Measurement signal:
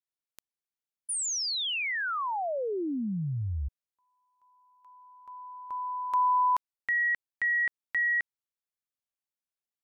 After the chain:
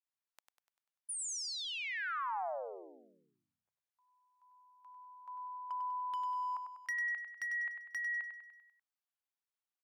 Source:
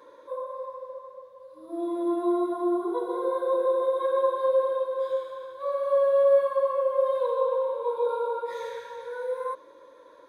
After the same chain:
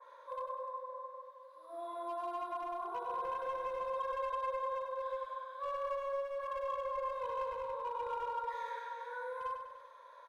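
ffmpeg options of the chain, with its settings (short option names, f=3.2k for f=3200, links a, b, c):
-filter_complex "[0:a]highpass=f=710:w=0.5412,highpass=f=710:w=1.3066,highshelf=f=3k:g=-8.5,acompressor=threshold=-42dB:ratio=6:attack=97:release=30:knee=6:detection=peak,volume=34dB,asoftclip=hard,volume=-34dB,asplit=2[a][b];[b]aecho=0:1:98|196|294|392|490|588:0.447|0.223|0.112|0.0558|0.0279|0.014[c];[a][c]amix=inputs=2:normalize=0,adynamicequalizer=threshold=0.00316:dfrequency=2000:dqfactor=0.7:tfrequency=2000:tqfactor=0.7:attack=5:release=100:ratio=0.375:range=3:mode=cutabove:tftype=highshelf"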